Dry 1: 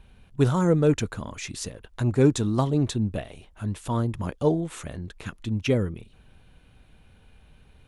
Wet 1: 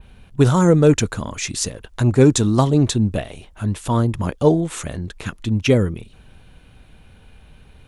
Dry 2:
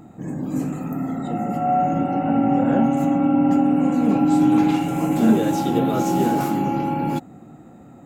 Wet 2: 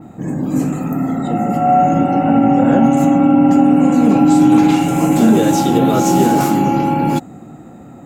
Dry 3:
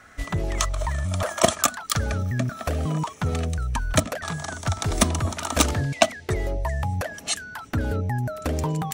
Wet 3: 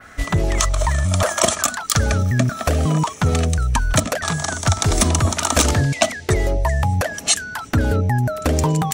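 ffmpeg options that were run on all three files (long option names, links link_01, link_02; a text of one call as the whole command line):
ffmpeg -i in.wav -af "adynamicequalizer=threshold=0.00562:dfrequency=7000:dqfactor=0.89:tfrequency=7000:tqfactor=0.89:attack=5:release=100:ratio=0.375:range=2.5:mode=boostabove:tftype=bell,alimiter=level_in=9dB:limit=-1dB:release=50:level=0:latency=1,volume=-1.5dB" out.wav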